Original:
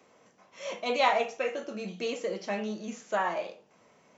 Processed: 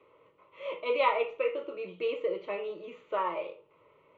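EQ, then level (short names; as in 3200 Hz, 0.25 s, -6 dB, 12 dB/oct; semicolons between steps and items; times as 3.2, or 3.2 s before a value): air absorption 350 m; fixed phaser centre 1100 Hz, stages 8; +3.5 dB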